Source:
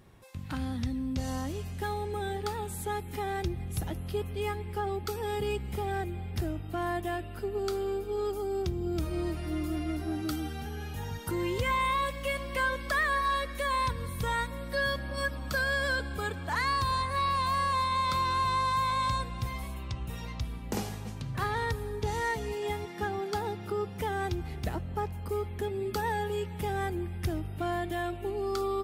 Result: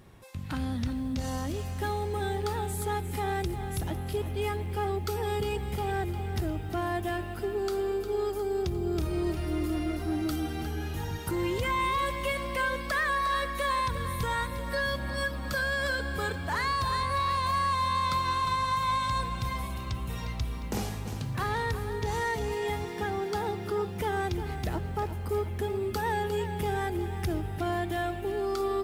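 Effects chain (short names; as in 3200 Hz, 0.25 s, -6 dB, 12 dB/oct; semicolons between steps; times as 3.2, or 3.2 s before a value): in parallel at -7 dB: soft clip -35 dBFS, distortion -8 dB; on the sum: limiter -22 dBFS, peak gain reduction 3 dB; lo-fi delay 0.355 s, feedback 55%, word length 9-bit, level -10.5 dB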